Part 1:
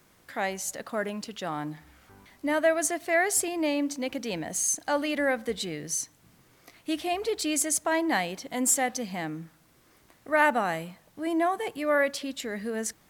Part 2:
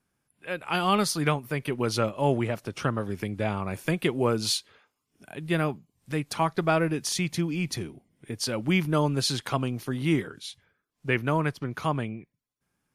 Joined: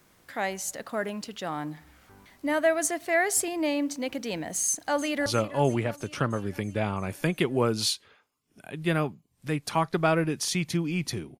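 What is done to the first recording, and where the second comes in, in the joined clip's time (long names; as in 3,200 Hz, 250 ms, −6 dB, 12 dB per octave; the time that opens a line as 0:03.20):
part 1
0:04.65–0:05.26: delay throw 330 ms, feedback 70%, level −15.5 dB
0:05.26: continue with part 2 from 0:01.90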